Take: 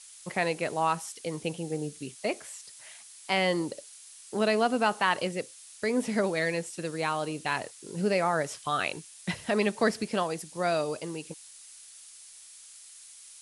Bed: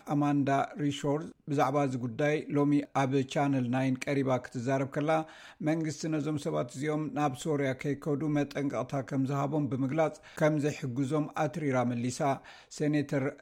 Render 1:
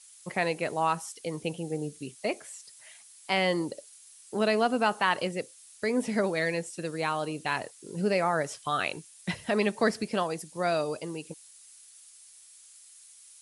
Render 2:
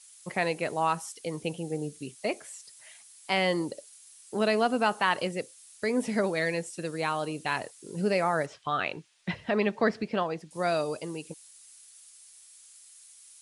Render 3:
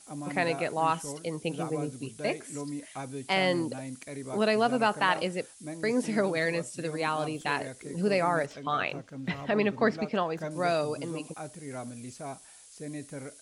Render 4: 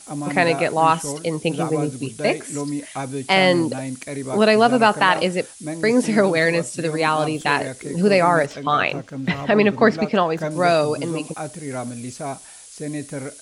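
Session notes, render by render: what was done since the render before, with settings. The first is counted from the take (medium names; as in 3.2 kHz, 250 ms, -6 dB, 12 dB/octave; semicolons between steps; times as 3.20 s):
noise reduction 6 dB, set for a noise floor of -50 dBFS
8.46–10.51 s: low-pass 3.4 kHz
add bed -10.5 dB
trim +10.5 dB; peak limiter -2 dBFS, peak gain reduction 2 dB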